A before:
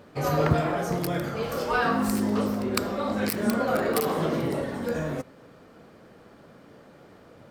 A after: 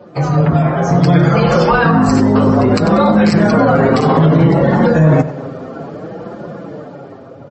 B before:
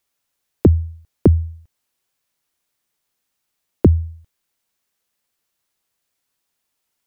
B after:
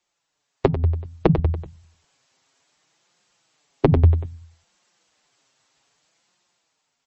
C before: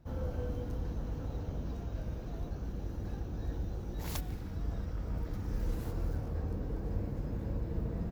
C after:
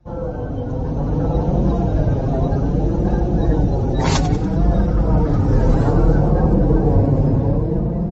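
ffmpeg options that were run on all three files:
-filter_complex "[0:a]acrossover=split=210[s0][s1];[s1]acompressor=threshold=0.02:ratio=6[s2];[s0][s2]amix=inputs=2:normalize=0,aresample=22050,aresample=44100,adynamicequalizer=threshold=0.00501:dfrequency=160:dqfactor=5.9:tfrequency=160:tqfactor=5.9:attack=5:release=100:ratio=0.375:range=2.5:mode=boostabove:tftype=bell,afftfilt=real='re*lt(hypot(re,im),0.708)':imag='im*lt(hypot(re,im),0.708)':win_size=1024:overlap=0.75,afftdn=nr=12:nf=-51,equalizer=f=810:t=o:w=0.84:g=3.5,flanger=delay=5.6:depth=2:regen=-12:speed=0.62:shape=sinusoidal,asplit=2[s3][s4];[s4]aecho=0:1:95|190|285|380:0.133|0.0653|0.032|0.0157[s5];[s3][s5]amix=inputs=2:normalize=0,dynaudnorm=f=130:g=17:m=3.35,highpass=f=60:p=1,alimiter=level_in=8.41:limit=0.891:release=50:level=0:latency=1,volume=0.891" -ar 32000 -c:a libmp3lame -b:a 32k

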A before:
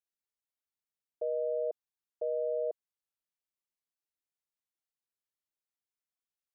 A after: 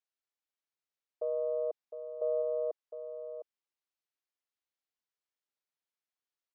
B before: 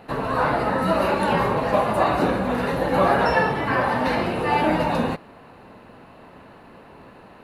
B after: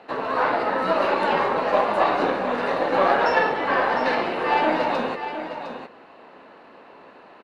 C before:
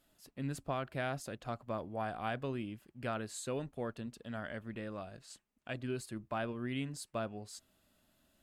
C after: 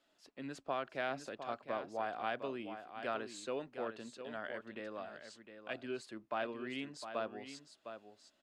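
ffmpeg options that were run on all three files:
-filter_complex "[0:a]aeval=exprs='0.501*(cos(1*acos(clip(val(0)/0.501,-1,1)))-cos(1*PI/2))+0.0501*(cos(4*acos(clip(val(0)/0.501,-1,1)))-cos(4*PI/2))':c=same,acrossover=split=260 6700:gain=0.1 1 0.0708[s0][s1][s2];[s0][s1][s2]amix=inputs=3:normalize=0,aecho=1:1:708:0.335"

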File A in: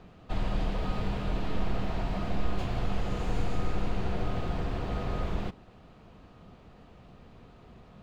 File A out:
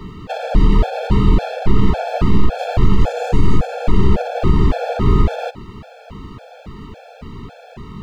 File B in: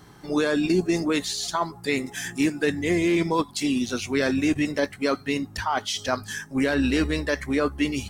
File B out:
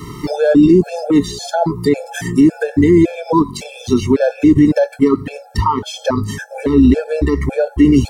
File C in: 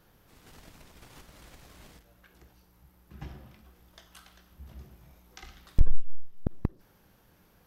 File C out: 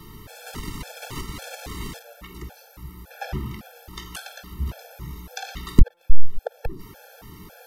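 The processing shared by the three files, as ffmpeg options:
-filter_complex "[0:a]acrossover=split=110|940[s0][s1][s2];[s2]acompressor=threshold=0.00398:ratio=4[s3];[s0][s1][s3]amix=inputs=3:normalize=0,alimiter=level_in=11.9:limit=0.891:release=50:level=0:latency=1,afftfilt=real='re*gt(sin(2*PI*1.8*pts/sr)*(1-2*mod(floor(b*sr/1024/450),2)),0)':imag='im*gt(sin(2*PI*1.8*pts/sr)*(1-2*mod(floor(b*sr/1024/450),2)),0)':win_size=1024:overlap=0.75,volume=0.891"

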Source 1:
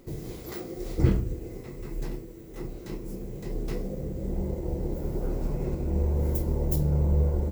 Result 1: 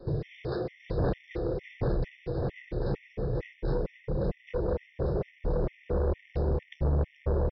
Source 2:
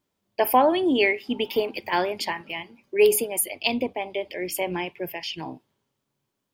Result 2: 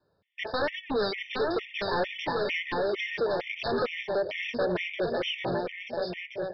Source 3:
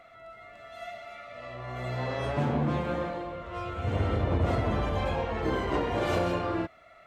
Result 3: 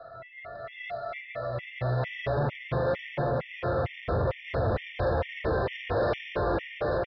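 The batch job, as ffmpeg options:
-filter_complex "[0:a]adynamicequalizer=threshold=0.00794:dfrequency=120:dqfactor=1.2:tfrequency=120:tqfactor=1.2:attack=5:release=100:ratio=0.375:range=4:mode=cutabove:tftype=bell,asplit=2[s0][s1];[s1]acompressor=threshold=0.0178:ratio=6,volume=1[s2];[s0][s2]amix=inputs=2:normalize=0,aeval=exprs='0.112*(abs(mod(val(0)/0.112+3,4)-2)-1)':c=same,equalizer=f=125:t=o:w=1:g=9,equalizer=f=250:t=o:w=1:g=-9,equalizer=f=500:t=o:w=1:g=9,equalizer=f=1000:t=o:w=1:g=-3,equalizer=f=2000:t=o:w=1:g=5,equalizer=f=4000:t=o:w=1:g=-4,aecho=1:1:790|1382|1827|2160|2410:0.631|0.398|0.251|0.158|0.1,aresample=11025,asoftclip=type=tanh:threshold=0.0794,aresample=44100,afftfilt=real='re*gt(sin(2*PI*2.2*pts/sr)*(1-2*mod(floor(b*sr/1024/1800),2)),0)':imag='im*gt(sin(2*PI*2.2*pts/sr)*(1-2*mod(floor(b*sr/1024/1800),2)),0)':win_size=1024:overlap=0.75"

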